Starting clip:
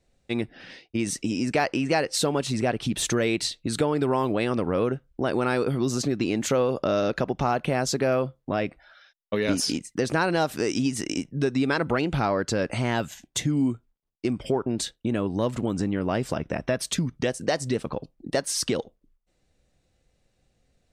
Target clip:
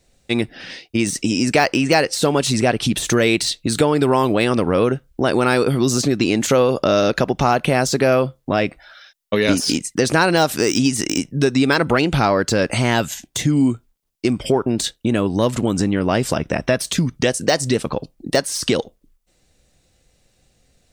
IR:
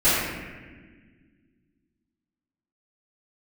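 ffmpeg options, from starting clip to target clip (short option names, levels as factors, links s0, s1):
-af "deesser=0.65,highshelf=f=3500:g=8.5,volume=2.37"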